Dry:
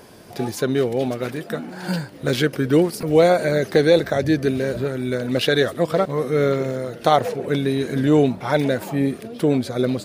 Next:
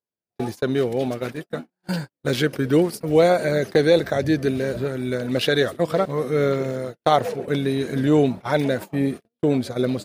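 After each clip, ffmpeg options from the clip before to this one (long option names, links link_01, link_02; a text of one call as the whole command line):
ffmpeg -i in.wav -af "agate=range=-50dB:threshold=-27dB:ratio=16:detection=peak,volume=-1.5dB" out.wav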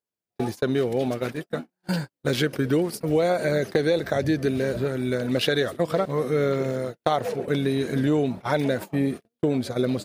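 ffmpeg -i in.wav -af "acompressor=threshold=-18dB:ratio=6" out.wav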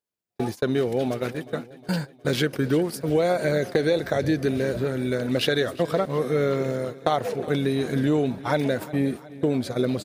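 ffmpeg -i in.wav -af "aecho=1:1:361|722|1083|1444|1805:0.119|0.0642|0.0347|0.0187|0.0101" out.wav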